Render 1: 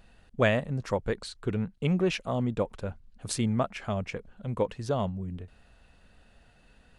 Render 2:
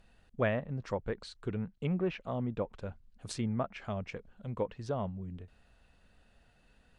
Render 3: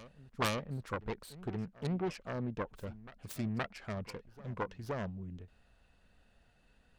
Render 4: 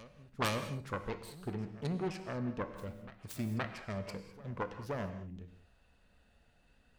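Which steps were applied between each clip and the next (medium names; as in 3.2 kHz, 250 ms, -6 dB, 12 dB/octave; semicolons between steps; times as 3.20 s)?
low-pass that closes with the level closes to 2.2 kHz, closed at -24 dBFS; trim -6 dB
self-modulated delay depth 0.71 ms; reverse echo 521 ms -17 dB; trim -2.5 dB
feedback comb 65 Hz, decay 0.58 s, harmonics odd, mix 50%; gated-style reverb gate 230 ms flat, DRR 8.5 dB; trim +4.5 dB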